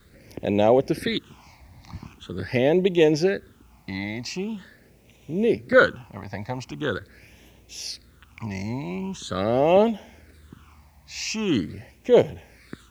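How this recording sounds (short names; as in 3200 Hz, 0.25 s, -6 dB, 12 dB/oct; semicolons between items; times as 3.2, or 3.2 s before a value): phasing stages 8, 0.43 Hz, lowest notch 410–1400 Hz; a quantiser's noise floor 12-bit, dither triangular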